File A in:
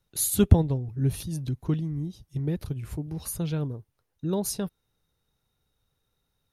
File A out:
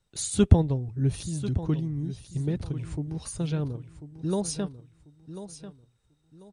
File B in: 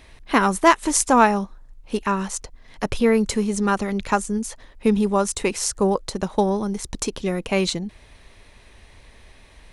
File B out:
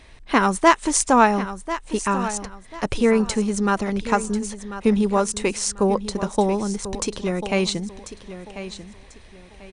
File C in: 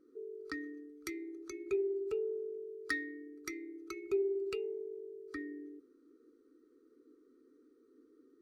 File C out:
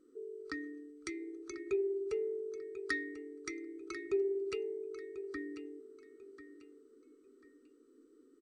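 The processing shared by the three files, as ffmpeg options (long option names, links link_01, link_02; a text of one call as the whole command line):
ffmpeg -i in.wav -af "aecho=1:1:1042|2084|3126:0.237|0.0664|0.0186" -ar 32000 -c:a mp2 -b:a 192k out.mp2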